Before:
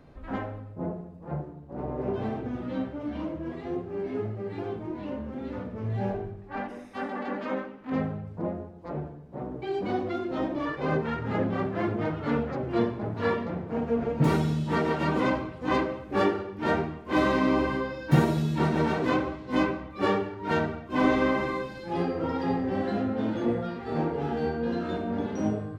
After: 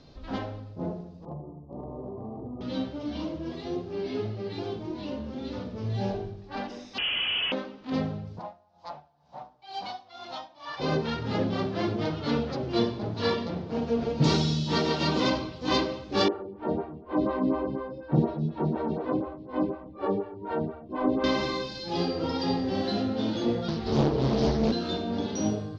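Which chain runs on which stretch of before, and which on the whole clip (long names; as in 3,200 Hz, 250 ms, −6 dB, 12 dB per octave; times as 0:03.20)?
0:01.25–0:02.61: Chebyshev low-pass filter 1,200 Hz, order 8 + downward compressor, threshold −34 dBFS
0:03.92–0:04.53: low-pass filter 3,900 Hz + high-shelf EQ 3,000 Hz +10 dB
0:06.98–0:07.52: sign of each sample alone + voice inversion scrambler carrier 3,200 Hz
0:08.39–0:10.80: high-pass filter 49 Hz + low shelf with overshoot 560 Hz −12 dB, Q 3 + tremolo with a sine in dB 2.1 Hz, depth 19 dB
0:16.28–0:21.24: low-pass filter 1,100 Hz + phaser with staggered stages 4.1 Hz
0:23.68–0:24.72: low-shelf EQ 330 Hz +10 dB + frequency shifter −15 Hz + highs frequency-modulated by the lows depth 0.88 ms
whole clip: Butterworth low-pass 5,900 Hz 36 dB per octave; high shelf with overshoot 2,900 Hz +13.5 dB, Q 1.5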